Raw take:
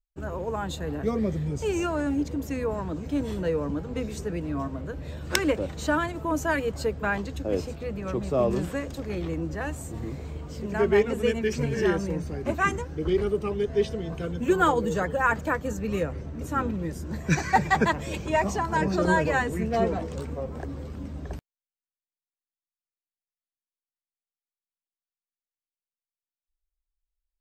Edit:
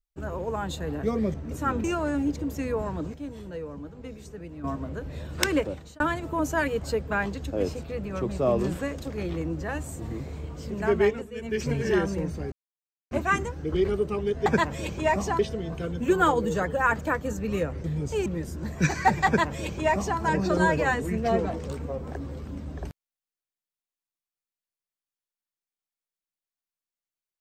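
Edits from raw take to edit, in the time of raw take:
1.34–1.76 s: swap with 16.24–16.74 s
3.06–4.56 s: gain -9.5 dB
5.49–5.92 s: fade out
10.82–11.65 s: dip -16 dB, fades 0.39 s equal-power
12.44 s: insert silence 0.59 s
17.74–18.67 s: copy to 13.79 s

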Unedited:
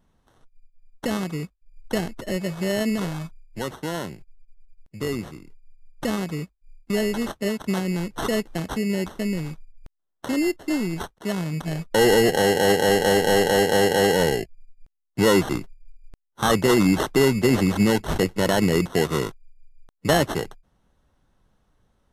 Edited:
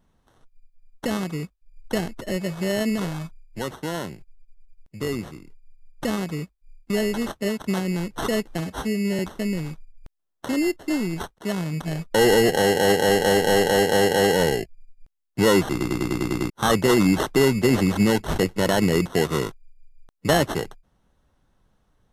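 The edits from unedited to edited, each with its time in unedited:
8.59–8.99 s: stretch 1.5×
15.50 s: stutter in place 0.10 s, 8 plays

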